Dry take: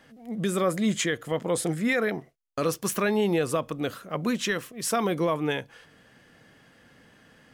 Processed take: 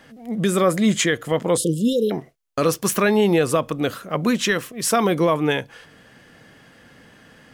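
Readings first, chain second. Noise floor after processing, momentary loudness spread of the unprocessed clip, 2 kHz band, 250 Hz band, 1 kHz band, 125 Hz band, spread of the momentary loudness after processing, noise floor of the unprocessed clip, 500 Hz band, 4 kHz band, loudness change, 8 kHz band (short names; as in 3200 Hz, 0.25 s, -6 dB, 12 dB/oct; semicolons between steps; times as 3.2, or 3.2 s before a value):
-51 dBFS, 7 LU, +5.0 dB, +7.0 dB, +7.0 dB, +7.0 dB, 8 LU, -58 dBFS, +7.0 dB, +7.0 dB, +7.0 dB, +7.0 dB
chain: spectral delete 1.57–2.11, 590–2700 Hz; gain +7 dB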